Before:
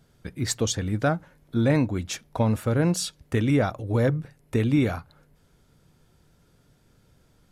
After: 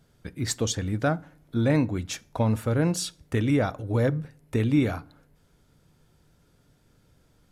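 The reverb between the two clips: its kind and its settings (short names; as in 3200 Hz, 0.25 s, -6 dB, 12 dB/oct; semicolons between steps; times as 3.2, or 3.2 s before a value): FDN reverb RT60 0.54 s, low-frequency decay 1.2×, high-frequency decay 0.7×, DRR 19 dB; gain -1.5 dB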